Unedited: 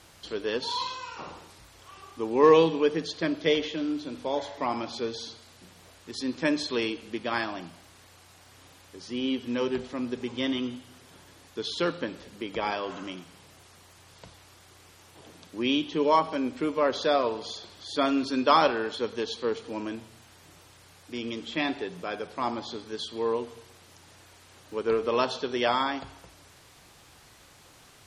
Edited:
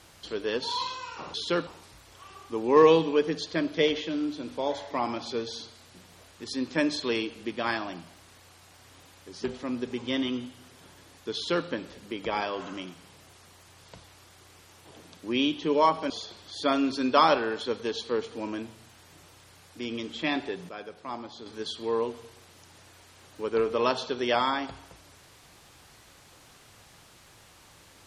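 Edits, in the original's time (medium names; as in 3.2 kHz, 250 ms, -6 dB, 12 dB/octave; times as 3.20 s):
9.11–9.74 s: delete
11.64–11.97 s: copy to 1.34 s
16.40–17.43 s: delete
22.02–22.79 s: gain -7 dB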